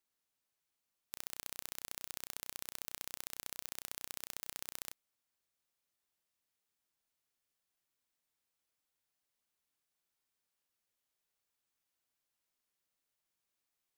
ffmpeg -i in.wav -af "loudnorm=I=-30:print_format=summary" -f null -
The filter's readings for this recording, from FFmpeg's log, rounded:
Input Integrated:    -44.5 LUFS
Input True Peak:     -13.5 dBTP
Input LRA:             5.0 LU
Input Threshold:     -54.6 LUFS